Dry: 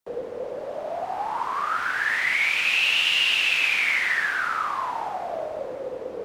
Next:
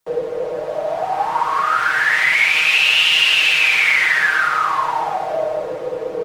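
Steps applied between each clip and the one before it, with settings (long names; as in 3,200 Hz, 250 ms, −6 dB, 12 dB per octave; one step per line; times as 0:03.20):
parametric band 260 Hz −12.5 dB 0.29 octaves
comb filter 6.4 ms, depth 84%
in parallel at −1.5 dB: brickwall limiter −14.5 dBFS, peak gain reduction 7.5 dB
on the sum: level +1.5 dB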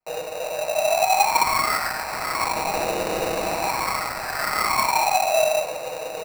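running median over 25 samples
low shelf with overshoot 540 Hz −7 dB, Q 3
sample-rate reduction 3,300 Hz, jitter 0%
level −1.5 dB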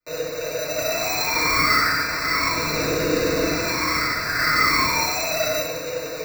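hard clipping −18 dBFS, distortion −13 dB
phaser with its sweep stopped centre 3,000 Hz, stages 6
feedback delay network reverb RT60 0.76 s, low-frequency decay 1×, high-frequency decay 0.85×, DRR −4.5 dB
level +2 dB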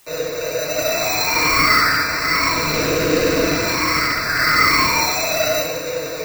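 loose part that buzzes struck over −31 dBFS, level −24 dBFS
flanger 1.2 Hz, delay 2.5 ms, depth 9 ms, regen +81%
bit-depth reduction 10 bits, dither triangular
level +8.5 dB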